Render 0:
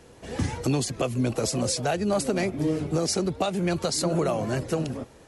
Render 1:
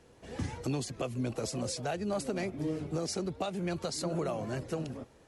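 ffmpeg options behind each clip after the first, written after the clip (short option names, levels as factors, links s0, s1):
-af "highshelf=f=8700:g=-5,volume=0.376"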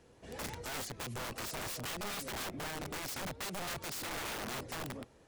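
-af "aeval=exprs='(mod(42.2*val(0)+1,2)-1)/42.2':c=same,volume=0.75"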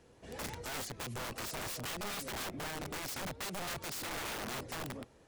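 -af anull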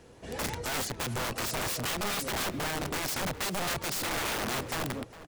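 -filter_complex "[0:a]asplit=2[s0][s1];[s1]adelay=408.2,volume=0.178,highshelf=f=4000:g=-9.18[s2];[s0][s2]amix=inputs=2:normalize=0,volume=2.51"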